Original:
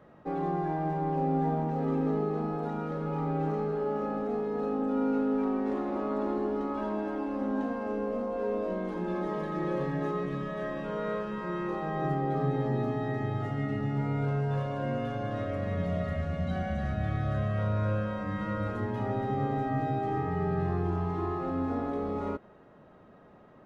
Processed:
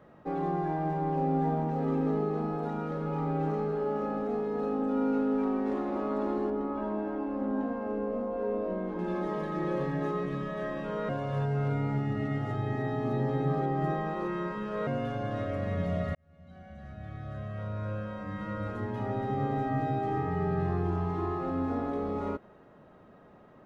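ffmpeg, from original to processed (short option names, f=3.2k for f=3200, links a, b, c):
-filter_complex "[0:a]asettb=1/sr,asplit=3[a][b][c];[a]atrim=end=6.504[d];[b]atrim=start=6.5:end=8.99,asetpts=PTS-STARTPTS,afade=t=in:d=0.004:c=qsin,afade=t=out:st=2.486:d=0.004:c=qsin,lowpass=f=1.5k:p=1[e];[c]atrim=start=8.986[f];[d][e]acrossfade=d=0.004:c1=hsin:c2=qsin[g];[g][f]acrossfade=d=0.004:c1=qsin:c2=hsin,asplit=4[h][i][j][k];[h]atrim=end=11.092[l];[i]atrim=start=11.088:end=14.872,asetpts=PTS-STARTPTS,areverse[m];[j]atrim=start=14.868:end=16.15,asetpts=PTS-STARTPTS,afade=t=out:st=1.278:d=0.004:c=hsin[n];[k]atrim=start=16.15,asetpts=PTS-STARTPTS,afade=t=in:d=3.45[o];[l][m]acrossfade=d=0.004:c1=hsin:c2=hsin[p];[n][o]concat=n=2:v=0:a=1[q];[p][q]acrossfade=d=0.004:c1=hsin:c2=hsin"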